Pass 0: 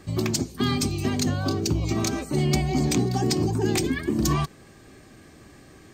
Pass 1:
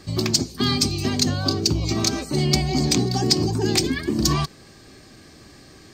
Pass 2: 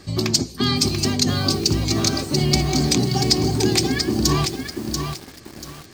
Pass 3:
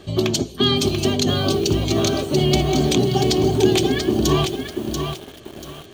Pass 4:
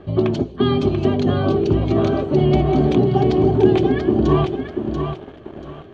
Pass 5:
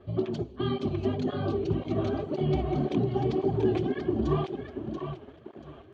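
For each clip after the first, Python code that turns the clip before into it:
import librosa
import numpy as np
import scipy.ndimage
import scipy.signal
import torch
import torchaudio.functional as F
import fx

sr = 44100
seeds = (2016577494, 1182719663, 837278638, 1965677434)

y1 = fx.peak_eq(x, sr, hz=4700.0, db=10.0, octaves=0.76)
y1 = y1 * 10.0 ** (1.5 / 20.0)
y2 = fx.echo_crushed(y1, sr, ms=687, feedback_pct=35, bits=6, wet_db=-5.5)
y2 = y2 * 10.0 ** (1.0 / 20.0)
y3 = fx.graphic_eq_31(y2, sr, hz=(400, 630, 2000, 3150, 5000, 8000, 16000), db=(8, 9, -5, 11, -12, -6, -5))
y4 = scipy.signal.sosfilt(scipy.signal.butter(2, 1500.0, 'lowpass', fs=sr, output='sos'), y3)
y4 = y4 * 10.0 ** (2.5 / 20.0)
y5 = fx.flanger_cancel(y4, sr, hz=1.9, depth_ms=6.9)
y5 = y5 * 10.0 ** (-8.5 / 20.0)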